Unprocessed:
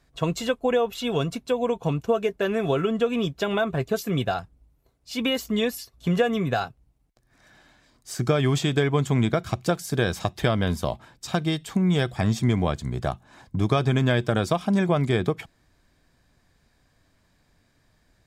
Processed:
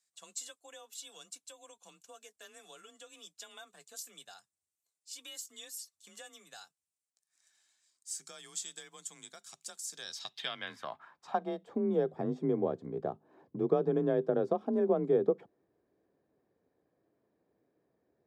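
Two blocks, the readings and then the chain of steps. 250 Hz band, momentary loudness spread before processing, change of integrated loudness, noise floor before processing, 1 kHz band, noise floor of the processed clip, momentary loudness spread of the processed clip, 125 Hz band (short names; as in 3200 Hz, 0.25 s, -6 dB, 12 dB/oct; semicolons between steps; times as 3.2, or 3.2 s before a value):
-13.0 dB, 7 LU, -10.0 dB, -66 dBFS, -12.5 dB, under -85 dBFS, 23 LU, -21.5 dB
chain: dynamic EQ 2400 Hz, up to -6 dB, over -45 dBFS, Q 2.3; band-pass sweep 7900 Hz -> 400 Hz, 9.82–11.8; frequency shift +30 Hz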